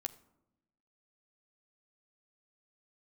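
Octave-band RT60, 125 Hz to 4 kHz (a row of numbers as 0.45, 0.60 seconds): 1.2, 1.3, 0.90, 0.80, 0.55, 0.40 seconds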